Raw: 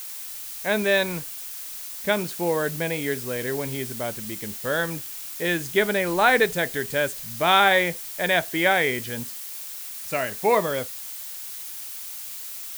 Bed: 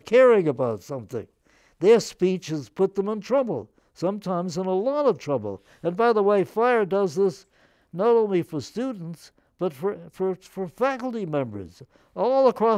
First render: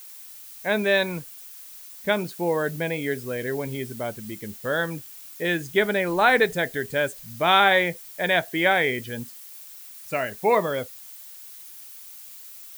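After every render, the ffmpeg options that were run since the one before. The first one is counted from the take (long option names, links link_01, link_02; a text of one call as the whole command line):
ffmpeg -i in.wav -af "afftdn=noise_reduction=9:noise_floor=-36" out.wav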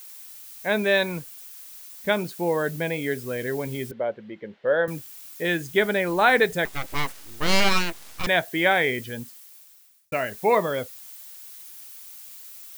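ffmpeg -i in.wav -filter_complex "[0:a]asettb=1/sr,asplit=3[link_01][link_02][link_03];[link_01]atrim=end=3.914[link_04];[link_02]atrim=start=3.91:end=4.88,asetpts=PTS-STARTPTS,afade=type=in:duration=0.004:curve=qsin,afade=type=out:start_time=0.966:duration=0.004:curve=qsin,highpass=210,equalizer=frequency=260:width_type=q:width=4:gain=-6,equalizer=frequency=530:width_type=q:width=4:gain=9,equalizer=frequency=1200:width_type=q:width=4:gain=-4,equalizer=frequency=2500:width_type=q:width=4:gain=-5,lowpass=frequency=2800:width=0.5412,lowpass=frequency=2800:width=1.3066[link_05];[link_03]atrim=start=4.876[link_06];[link_04][link_05]acrossfade=duration=0.004:curve1=hsin:curve2=qsin[link_07];[link_07][link_06]acrossfade=duration=0.004:curve1=qsin:curve2=hsin,asettb=1/sr,asplit=3[link_08][link_09][link_10];[link_08]atrim=end=6.654[link_11];[link_09]atrim=start=6.65:end=8.27,asetpts=PTS-STARTPTS,afade=type=in:duration=0.004:curve=qsin,afade=type=out:start_time=1.616:duration=0.004:curve=qsin,aeval=exprs='abs(val(0))':channel_layout=same[link_12];[link_10]atrim=start=8.266[link_13];[link_11][link_12]acrossfade=duration=0.004:curve1=hsin:curve2=qsin[link_14];[link_14][link_13]acrossfade=duration=0.004:curve1=qsin:curve2=hsin,asplit=2[link_15][link_16];[link_15]atrim=end=10.12,asetpts=PTS-STARTPTS,afade=type=out:start_time=9.01:duration=1.11[link_17];[link_16]atrim=start=10.12,asetpts=PTS-STARTPTS,afade=type=in:duration=0.004:curve=hsin[link_18];[link_17][link_18]concat=n=2:v=0:a=1" out.wav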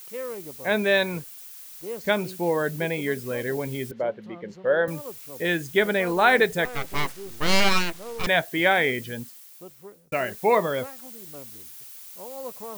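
ffmpeg -i in.wav -i bed.wav -filter_complex "[1:a]volume=-18.5dB[link_01];[0:a][link_01]amix=inputs=2:normalize=0" out.wav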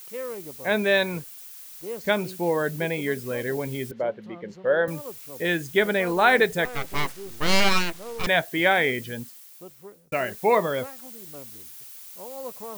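ffmpeg -i in.wav -af anull out.wav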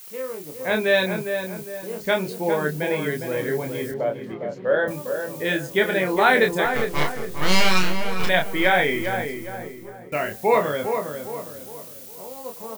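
ffmpeg -i in.wav -filter_complex "[0:a]asplit=2[link_01][link_02];[link_02]adelay=27,volume=-4dB[link_03];[link_01][link_03]amix=inputs=2:normalize=0,asplit=2[link_04][link_05];[link_05]adelay=407,lowpass=frequency=1600:poles=1,volume=-6dB,asplit=2[link_06][link_07];[link_07]adelay=407,lowpass=frequency=1600:poles=1,volume=0.43,asplit=2[link_08][link_09];[link_09]adelay=407,lowpass=frequency=1600:poles=1,volume=0.43,asplit=2[link_10][link_11];[link_11]adelay=407,lowpass=frequency=1600:poles=1,volume=0.43,asplit=2[link_12][link_13];[link_13]adelay=407,lowpass=frequency=1600:poles=1,volume=0.43[link_14];[link_06][link_08][link_10][link_12][link_14]amix=inputs=5:normalize=0[link_15];[link_04][link_15]amix=inputs=2:normalize=0" out.wav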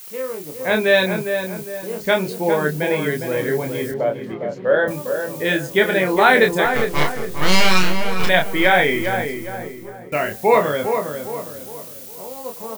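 ffmpeg -i in.wav -af "volume=4dB,alimiter=limit=-1dB:level=0:latency=1" out.wav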